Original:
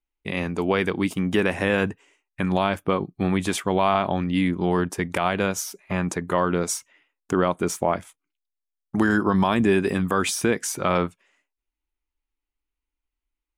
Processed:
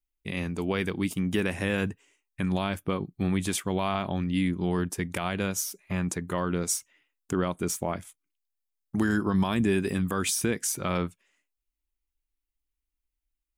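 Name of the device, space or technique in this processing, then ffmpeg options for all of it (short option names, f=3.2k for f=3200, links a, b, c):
smiley-face EQ: -af "lowshelf=f=140:g=5.5,equalizer=f=800:t=o:w=2.2:g=-5.5,highshelf=f=7.6k:g=8.5,volume=-4.5dB"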